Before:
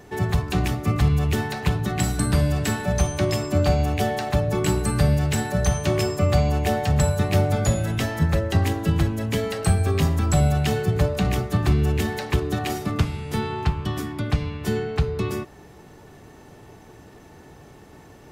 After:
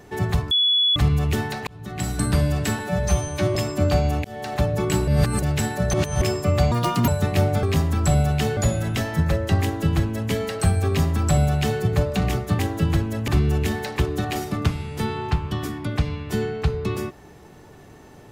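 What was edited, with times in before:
0:00.51–0:00.96: beep over 3,400 Hz −15.5 dBFS
0:01.67–0:02.23: fade in
0:02.79–0:03.30: time-stretch 1.5×
0:03.99–0:04.31: fade in
0:04.82–0:05.17: reverse
0:05.68–0:05.96: reverse
0:06.46–0:07.05: play speed 162%
0:08.65–0:09.34: duplicate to 0:11.62
0:09.89–0:10.83: duplicate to 0:07.60

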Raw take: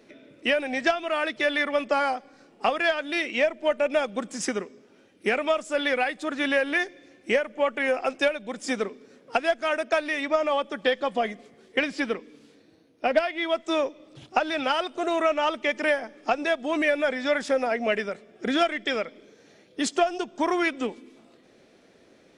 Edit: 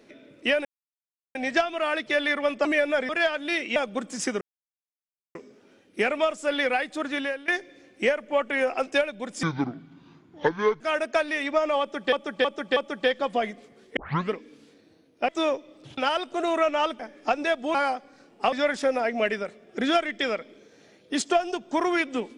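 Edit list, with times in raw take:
0:00.65: splice in silence 0.70 s
0:01.95–0:02.73: swap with 0:16.75–0:17.19
0:03.40–0:03.97: remove
0:04.62: splice in silence 0.94 s
0:06.30–0:06.75: fade out, to −19.5 dB
0:08.70–0:09.58: play speed 64%
0:10.58–0:10.90: repeat, 4 plays
0:11.78: tape start 0.35 s
0:13.10–0:13.60: remove
0:14.29–0:14.61: remove
0:15.63–0:16.00: remove

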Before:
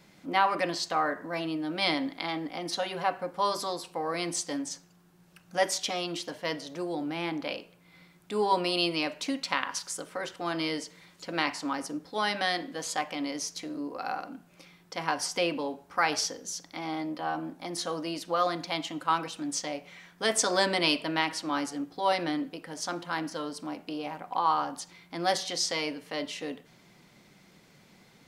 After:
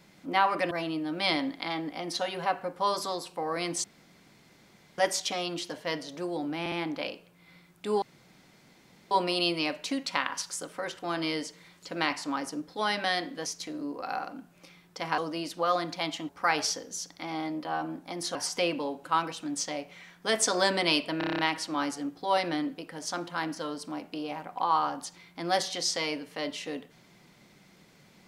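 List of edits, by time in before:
0:00.71–0:01.29: remove
0:04.42–0:05.56: fill with room tone
0:07.18: stutter 0.06 s, 3 plays
0:08.48: splice in room tone 1.09 s
0:12.83–0:13.42: remove
0:15.14–0:15.83: swap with 0:17.89–0:19.00
0:21.14: stutter 0.03 s, 8 plays

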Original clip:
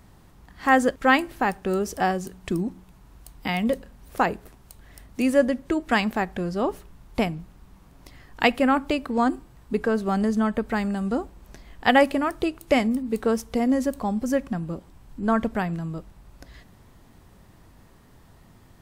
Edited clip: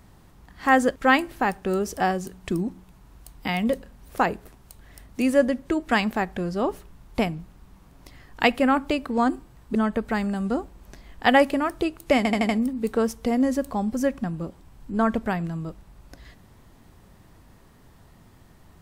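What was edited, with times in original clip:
0:09.75–0:10.36: remove
0:12.78: stutter 0.08 s, 5 plays

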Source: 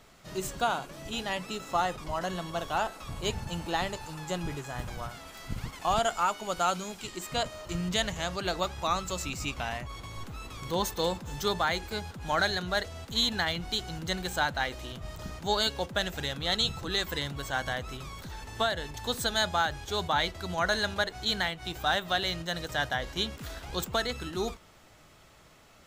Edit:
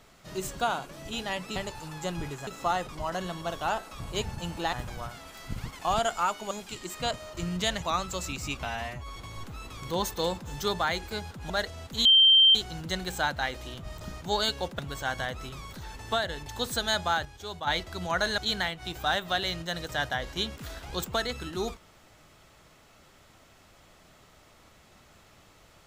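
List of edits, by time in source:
0:03.82–0:04.73: move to 0:01.56
0:06.51–0:06.83: remove
0:08.14–0:08.79: remove
0:09.62–0:09.96: time-stretch 1.5×
0:12.30–0:12.68: remove
0:13.23–0:13.73: beep over 3,140 Hz −14.5 dBFS
0:15.97–0:17.27: remove
0:19.73–0:20.15: clip gain −7.5 dB
0:20.86–0:21.18: remove

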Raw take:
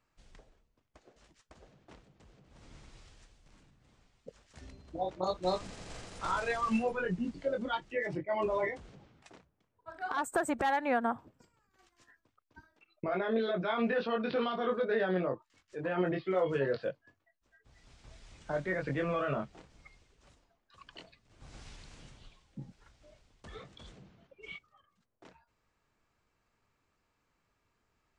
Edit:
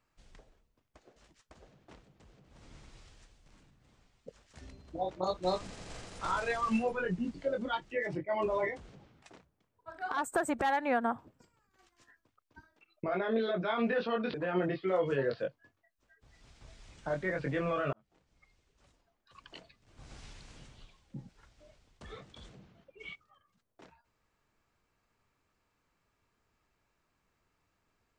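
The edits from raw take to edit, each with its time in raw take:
0:14.34–0:15.77: remove
0:19.36–0:20.87: fade in

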